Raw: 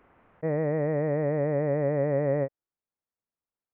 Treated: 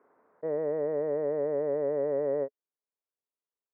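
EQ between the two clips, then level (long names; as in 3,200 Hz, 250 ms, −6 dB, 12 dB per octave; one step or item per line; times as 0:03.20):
high-frequency loss of the air 270 metres
loudspeaker in its box 260–2,000 Hz, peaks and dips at 260 Hz +4 dB, 430 Hz +10 dB, 610 Hz +5 dB, 1,000 Hz +6 dB, 1,500 Hz +3 dB
−8.0 dB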